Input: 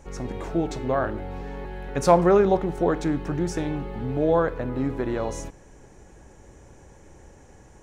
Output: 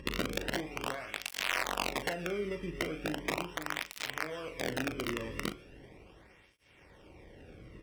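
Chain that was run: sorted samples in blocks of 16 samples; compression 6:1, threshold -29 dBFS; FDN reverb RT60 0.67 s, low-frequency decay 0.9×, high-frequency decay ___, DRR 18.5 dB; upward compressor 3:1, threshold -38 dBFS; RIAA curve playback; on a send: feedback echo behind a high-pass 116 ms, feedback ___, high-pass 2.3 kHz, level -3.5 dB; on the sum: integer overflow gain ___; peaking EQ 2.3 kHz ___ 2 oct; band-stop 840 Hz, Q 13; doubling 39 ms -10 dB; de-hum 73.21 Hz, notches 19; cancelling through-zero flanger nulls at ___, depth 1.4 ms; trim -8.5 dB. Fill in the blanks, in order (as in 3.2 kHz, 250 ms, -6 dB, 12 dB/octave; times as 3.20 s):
0.85×, 53%, 15 dB, +8 dB, 0.38 Hz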